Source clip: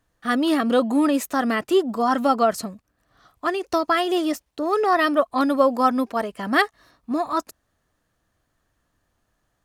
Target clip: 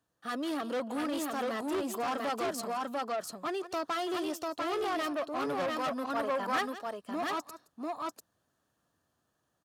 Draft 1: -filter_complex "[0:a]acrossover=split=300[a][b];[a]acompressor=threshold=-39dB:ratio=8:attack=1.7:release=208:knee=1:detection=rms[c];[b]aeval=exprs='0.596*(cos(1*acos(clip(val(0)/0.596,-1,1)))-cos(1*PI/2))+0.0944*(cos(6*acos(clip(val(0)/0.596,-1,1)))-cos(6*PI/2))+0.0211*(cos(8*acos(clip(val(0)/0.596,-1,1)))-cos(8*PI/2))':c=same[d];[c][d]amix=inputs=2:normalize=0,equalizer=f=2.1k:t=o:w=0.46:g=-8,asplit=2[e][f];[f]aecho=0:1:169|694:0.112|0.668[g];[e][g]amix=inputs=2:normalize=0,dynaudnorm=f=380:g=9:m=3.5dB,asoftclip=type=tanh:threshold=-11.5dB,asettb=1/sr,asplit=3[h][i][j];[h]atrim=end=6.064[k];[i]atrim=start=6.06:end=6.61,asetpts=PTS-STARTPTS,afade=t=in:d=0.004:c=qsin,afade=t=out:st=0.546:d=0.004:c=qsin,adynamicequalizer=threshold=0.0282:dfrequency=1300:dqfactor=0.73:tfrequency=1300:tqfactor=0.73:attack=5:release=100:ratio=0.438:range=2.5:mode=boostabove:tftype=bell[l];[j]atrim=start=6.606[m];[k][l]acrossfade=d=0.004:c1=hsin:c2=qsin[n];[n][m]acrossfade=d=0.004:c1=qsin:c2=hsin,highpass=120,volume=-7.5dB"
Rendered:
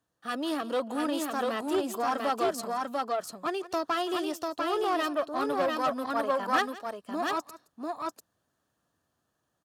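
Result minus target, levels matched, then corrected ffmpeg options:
soft clip: distortion -8 dB
-filter_complex "[0:a]acrossover=split=300[a][b];[a]acompressor=threshold=-39dB:ratio=8:attack=1.7:release=208:knee=1:detection=rms[c];[b]aeval=exprs='0.596*(cos(1*acos(clip(val(0)/0.596,-1,1)))-cos(1*PI/2))+0.0944*(cos(6*acos(clip(val(0)/0.596,-1,1)))-cos(6*PI/2))+0.0211*(cos(8*acos(clip(val(0)/0.596,-1,1)))-cos(8*PI/2))':c=same[d];[c][d]amix=inputs=2:normalize=0,equalizer=f=2.1k:t=o:w=0.46:g=-8,asplit=2[e][f];[f]aecho=0:1:169|694:0.112|0.668[g];[e][g]amix=inputs=2:normalize=0,dynaudnorm=f=380:g=9:m=3.5dB,asoftclip=type=tanh:threshold=-21dB,asettb=1/sr,asplit=3[h][i][j];[h]atrim=end=6.064[k];[i]atrim=start=6.06:end=6.61,asetpts=PTS-STARTPTS,afade=t=in:d=0.004:c=qsin,afade=t=out:st=0.546:d=0.004:c=qsin,adynamicequalizer=threshold=0.0282:dfrequency=1300:dqfactor=0.73:tfrequency=1300:tqfactor=0.73:attack=5:release=100:ratio=0.438:range=2.5:mode=boostabove:tftype=bell[l];[j]atrim=start=6.606[m];[k][l]acrossfade=d=0.004:c1=hsin:c2=qsin[n];[n][m]acrossfade=d=0.004:c1=qsin:c2=hsin,highpass=120,volume=-7.5dB"

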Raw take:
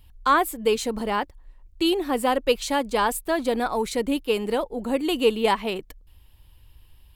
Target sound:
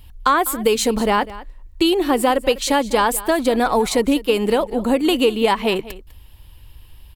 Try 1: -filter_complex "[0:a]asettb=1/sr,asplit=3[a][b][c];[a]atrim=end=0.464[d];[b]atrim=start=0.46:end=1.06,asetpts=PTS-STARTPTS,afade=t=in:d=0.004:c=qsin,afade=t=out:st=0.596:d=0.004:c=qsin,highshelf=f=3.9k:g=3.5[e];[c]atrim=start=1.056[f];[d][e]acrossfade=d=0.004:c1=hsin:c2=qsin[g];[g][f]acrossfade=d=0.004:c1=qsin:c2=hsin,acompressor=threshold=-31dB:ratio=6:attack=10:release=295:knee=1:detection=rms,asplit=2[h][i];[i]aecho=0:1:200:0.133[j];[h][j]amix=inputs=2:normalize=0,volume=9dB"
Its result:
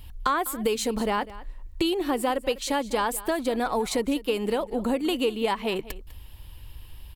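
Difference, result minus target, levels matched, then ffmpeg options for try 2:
compressor: peak gain reduction +9 dB
-filter_complex "[0:a]asettb=1/sr,asplit=3[a][b][c];[a]atrim=end=0.464[d];[b]atrim=start=0.46:end=1.06,asetpts=PTS-STARTPTS,afade=t=in:d=0.004:c=qsin,afade=t=out:st=0.596:d=0.004:c=qsin,highshelf=f=3.9k:g=3.5[e];[c]atrim=start=1.056[f];[d][e]acrossfade=d=0.004:c1=hsin:c2=qsin[g];[g][f]acrossfade=d=0.004:c1=qsin:c2=hsin,acompressor=threshold=-20.5dB:ratio=6:attack=10:release=295:knee=1:detection=rms,asplit=2[h][i];[i]aecho=0:1:200:0.133[j];[h][j]amix=inputs=2:normalize=0,volume=9dB"

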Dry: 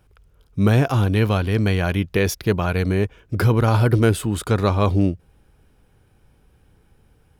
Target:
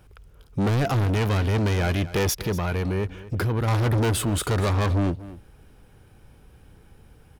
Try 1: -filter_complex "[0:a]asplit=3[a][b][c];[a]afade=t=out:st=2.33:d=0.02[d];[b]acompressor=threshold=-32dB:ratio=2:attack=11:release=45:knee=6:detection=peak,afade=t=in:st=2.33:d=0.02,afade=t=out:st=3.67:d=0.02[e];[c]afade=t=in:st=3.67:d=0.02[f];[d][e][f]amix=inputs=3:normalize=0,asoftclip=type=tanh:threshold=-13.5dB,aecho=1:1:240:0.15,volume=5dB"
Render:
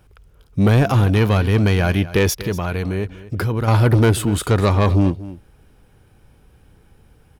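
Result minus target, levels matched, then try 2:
soft clip: distortion -9 dB
-filter_complex "[0:a]asplit=3[a][b][c];[a]afade=t=out:st=2.33:d=0.02[d];[b]acompressor=threshold=-32dB:ratio=2:attack=11:release=45:knee=6:detection=peak,afade=t=in:st=2.33:d=0.02,afade=t=out:st=3.67:d=0.02[e];[c]afade=t=in:st=3.67:d=0.02[f];[d][e][f]amix=inputs=3:normalize=0,asoftclip=type=tanh:threshold=-25dB,aecho=1:1:240:0.15,volume=5dB"

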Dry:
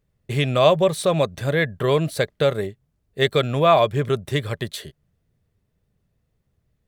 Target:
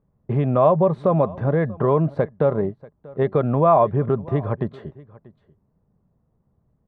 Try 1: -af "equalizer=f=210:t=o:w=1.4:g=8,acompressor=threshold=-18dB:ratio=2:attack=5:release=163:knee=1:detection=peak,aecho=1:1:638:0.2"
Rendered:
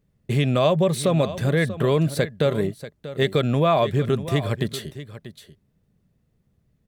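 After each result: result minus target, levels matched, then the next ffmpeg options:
echo-to-direct +8 dB; 1000 Hz band -3.5 dB
-af "equalizer=f=210:t=o:w=1.4:g=8,acompressor=threshold=-18dB:ratio=2:attack=5:release=163:knee=1:detection=peak,aecho=1:1:638:0.0794"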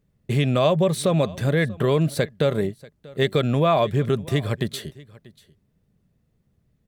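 1000 Hz band -3.5 dB
-af "equalizer=f=210:t=o:w=1.4:g=8,acompressor=threshold=-18dB:ratio=2:attack=5:release=163:knee=1:detection=peak,lowpass=f=980:t=q:w=2.4,aecho=1:1:638:0.0794"

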